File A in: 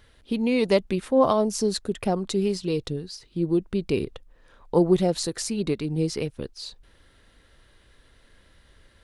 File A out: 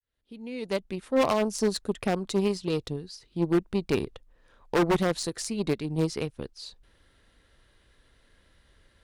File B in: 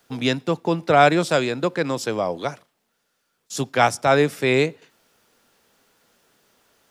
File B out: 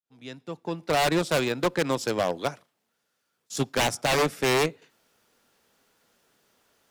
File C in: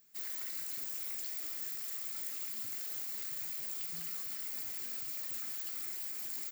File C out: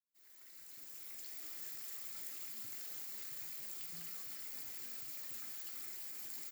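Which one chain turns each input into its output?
fade-in on the opening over 1.63 s; wavefolder -15.5 dBFS; Chebyshev shaper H 3 -17 dB, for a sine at -15.5 dBFS

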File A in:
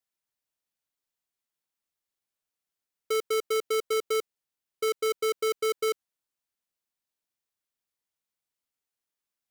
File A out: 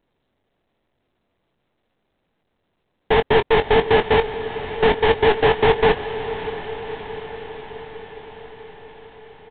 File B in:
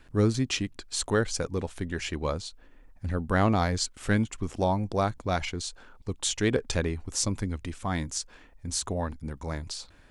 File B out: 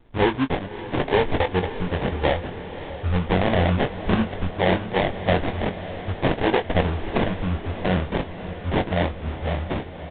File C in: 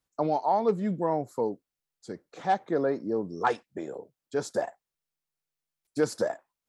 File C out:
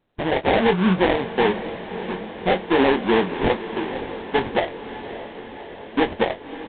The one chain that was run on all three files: block-companded coder 3-bit; spectral noise reduction 14 dB; dynamic bell 350 Hz, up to +4 dB, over -36 dBFS, Q 1.3; in parallel at 0 dB: compression, threshold -39 dBFS; on the sum: peak limiter -17.5 dBFS; vibrato 12 Hz 64 cents; sample-rate reducer 1.3 kHz, jitter 20%; doubling 22 ms -9 dB; echo that smears into a reverb 589 ms, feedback 68%, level -12.5 dB; trim +7.5 dB; A-law 64 kbps 8 kHz

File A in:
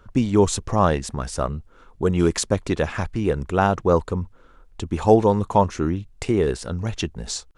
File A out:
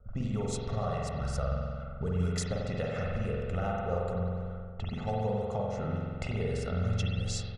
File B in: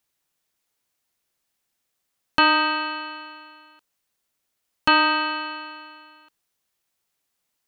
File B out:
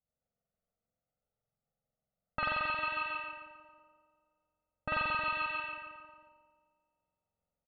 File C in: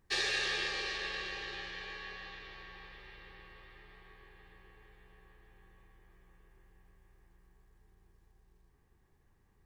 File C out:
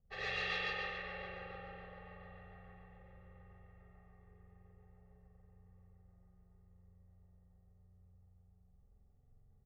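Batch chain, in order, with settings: rotary cabinet horn 7 Hz; comb 1.5 ms, depth 95%; compression 6:1, threshold -28 dBFS; spring tank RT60 2.1 s, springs 45 ms, chirp 55 ms, DRR -3.5 dB; level-controlled noise filter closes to 610 Hz, open at -22 dBFS; trim -5.5 dB

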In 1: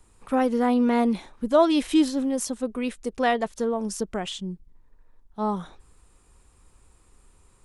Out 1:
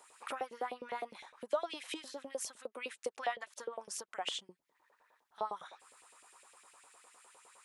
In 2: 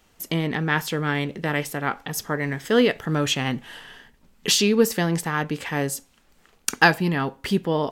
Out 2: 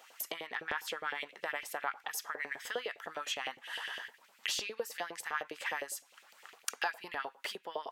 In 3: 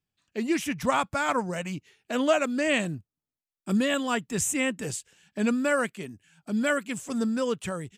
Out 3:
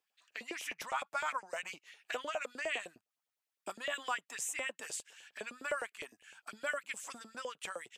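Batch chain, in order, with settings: compression 4:1, threshold -40 dBFS; LFO high-pass saw up 9.8 Hz 490–2900 Hz; trim +2 dB

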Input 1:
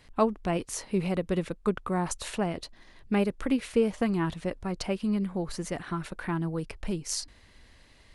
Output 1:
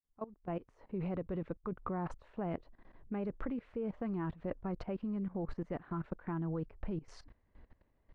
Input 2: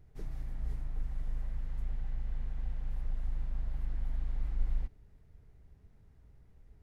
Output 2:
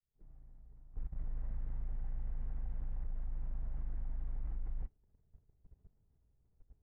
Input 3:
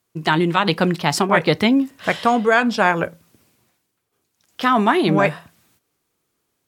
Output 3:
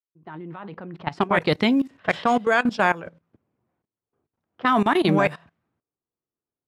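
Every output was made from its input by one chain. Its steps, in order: fade-in on the opening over 1.35 s; level held to a coarse grid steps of 18 dB; level-controlled noise filter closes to 1 kHz, open at -16 dBFS

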